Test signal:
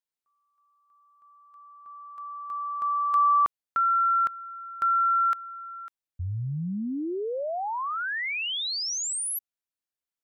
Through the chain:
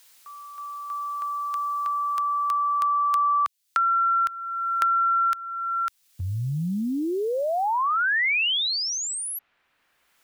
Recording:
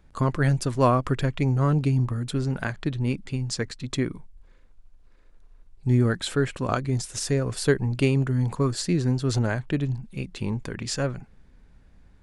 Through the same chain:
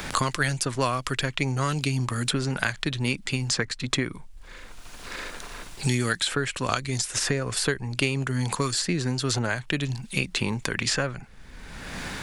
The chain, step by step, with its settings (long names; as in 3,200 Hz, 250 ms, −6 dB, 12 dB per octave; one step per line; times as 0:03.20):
tilt shelving filter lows −7 dB, about 910 Hz
multiband upward and downward compressor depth 100%
level +1 dB